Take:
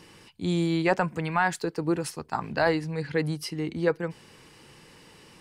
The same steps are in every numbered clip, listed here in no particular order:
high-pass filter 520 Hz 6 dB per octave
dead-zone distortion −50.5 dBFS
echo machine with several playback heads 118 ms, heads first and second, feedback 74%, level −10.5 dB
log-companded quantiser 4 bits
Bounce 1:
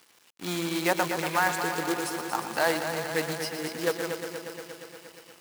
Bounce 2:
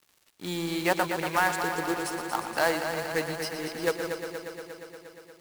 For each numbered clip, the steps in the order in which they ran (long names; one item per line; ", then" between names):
echo machine with several playback heads, then dead-zone distortion, then log-companded quantiser, then high-pass filter
high-pass filter, then dead-zone distortion, then log-companded quantiser, then echo machine with several playback heads